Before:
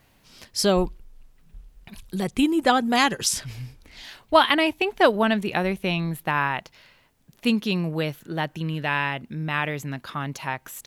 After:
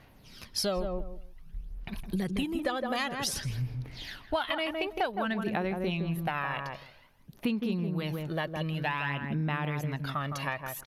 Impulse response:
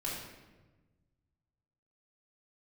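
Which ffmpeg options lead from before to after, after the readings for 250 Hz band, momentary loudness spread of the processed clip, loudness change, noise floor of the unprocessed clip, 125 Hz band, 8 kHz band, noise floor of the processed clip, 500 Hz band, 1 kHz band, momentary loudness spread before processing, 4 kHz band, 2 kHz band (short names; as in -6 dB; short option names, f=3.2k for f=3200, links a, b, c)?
-7.5 dB, 12 LU, -9.0 dB, -61 dBFS, -3.0 dB, -10.0 dB, -57 dBFS, -9.0 dB, -10.0 dB, 13 LU, -9.0 dB, -9.0 dB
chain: -filter_complex "[0:a]aresample=32000,aresample=44100,equalizer=f=7.6k:t=o:w=0.38:g=-10.5,aphaser=in_gain=1:out_gain=1:delay=1.8:decay=0.52:speed=0.53:type=sinusoidal,asplit=2[a][b];[b]adelay=162,lowpass=f=910:p=1,volume=-5dB,asplit=2[c][d];[d]adelay=162,lowpass=f=910:p=1,volume=0.17,asplit=2[e][f];[f]adelay=162,lowpass=f=910:p=1,volume=0.17[g];[c][e][g]amix=inputs=3:normalize=0[h];[a][h]amix=inputs=2:normalize=0,acompressor=threshold=-26dB:ratio=6,volume=-2dB"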